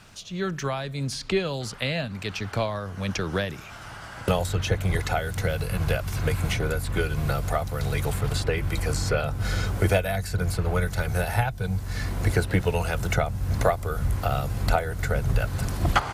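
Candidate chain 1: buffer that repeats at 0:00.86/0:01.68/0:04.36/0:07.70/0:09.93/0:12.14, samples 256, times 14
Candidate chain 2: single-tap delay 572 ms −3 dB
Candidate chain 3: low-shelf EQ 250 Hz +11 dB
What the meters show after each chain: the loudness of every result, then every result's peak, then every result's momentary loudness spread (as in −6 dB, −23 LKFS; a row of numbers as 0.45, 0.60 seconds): −27.0, −25.0, −20.0 LKFS; −6.0, −6.5, −2.5 dBFS; 6, 6, 8 LU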